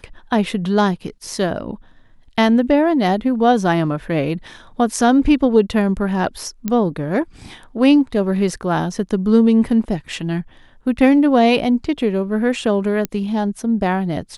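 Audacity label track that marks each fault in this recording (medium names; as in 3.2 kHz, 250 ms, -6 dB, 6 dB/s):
6.680000	6.680000	pop -8 dBFS
13.050000	13.050000	pop -7 dBFS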